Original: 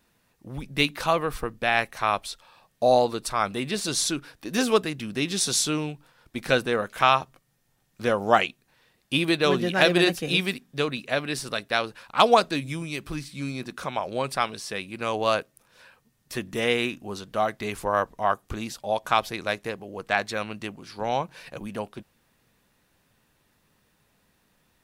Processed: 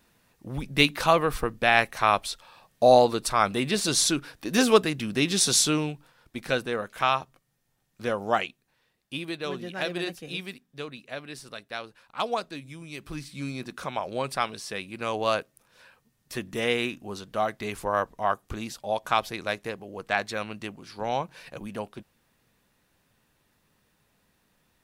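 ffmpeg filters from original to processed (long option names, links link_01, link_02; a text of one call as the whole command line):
ffmpeg -i in.wav -af "volume=11.5dB,afade=type=out:start_time=5.61:duration=0.88:silence=0.446684,afade=type=out:start_time=8.14:duration=1.11:silence=0.473151,afade=type=in:start_time=12.78:duration=0.52:silence=0.354813" out.wav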